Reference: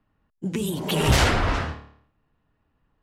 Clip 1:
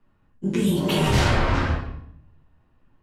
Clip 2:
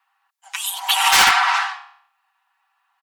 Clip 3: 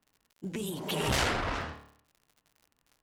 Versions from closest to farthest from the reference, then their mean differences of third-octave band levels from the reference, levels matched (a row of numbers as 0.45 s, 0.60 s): 3, 1, 2; 2.5 dB, 4.0 dB, 16.0 dB